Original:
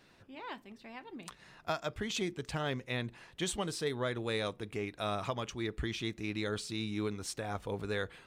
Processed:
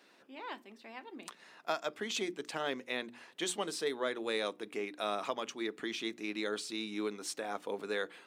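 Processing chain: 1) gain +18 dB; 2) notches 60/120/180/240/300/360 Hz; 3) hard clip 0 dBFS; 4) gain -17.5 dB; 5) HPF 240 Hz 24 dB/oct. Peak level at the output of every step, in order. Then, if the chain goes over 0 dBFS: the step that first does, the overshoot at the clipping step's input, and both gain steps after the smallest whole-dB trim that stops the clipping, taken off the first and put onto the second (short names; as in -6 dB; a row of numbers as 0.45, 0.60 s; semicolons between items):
-2.5, -2.5, -2.5, -20.0, -18.5 dBFS; no overload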